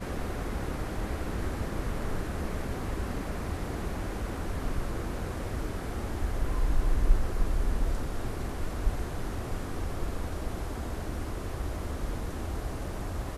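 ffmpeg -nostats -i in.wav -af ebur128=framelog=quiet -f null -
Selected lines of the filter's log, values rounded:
Integrated loudness:
  I:         -34.8 LUFS
  Threshold: -44.8 LUFS
Loudness range:
  LRA:         3.6 LU
  Threshold: -54.6 LUFS
  LRA low:   -36.5 LUFS
  LRA high:  -32.9 LUFS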